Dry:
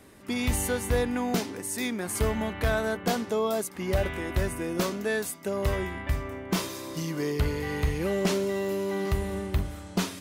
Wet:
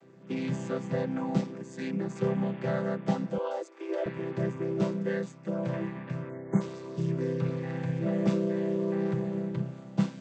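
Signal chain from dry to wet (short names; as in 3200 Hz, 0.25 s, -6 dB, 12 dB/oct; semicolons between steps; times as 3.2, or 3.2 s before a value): chord vocoder major triad, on C3; 3.38–4.06 steep high-pass 300 Hz 72 dB/oct; 6.3–6.61 spectral delete 2300–6100 Hz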